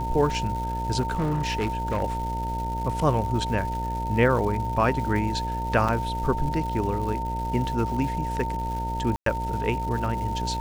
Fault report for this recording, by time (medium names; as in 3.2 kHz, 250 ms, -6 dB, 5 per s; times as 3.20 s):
buzz 60 Hz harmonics 14 -31 dBFS
crackle 360 per s -34 dBFS
whine 910 Hz -29 dBFS
1.00–2.02 s: clipped -21 dBFS
5.88–5.89 s: dropout 5.7 ms
9.16–9.26 s: dropout 103 ms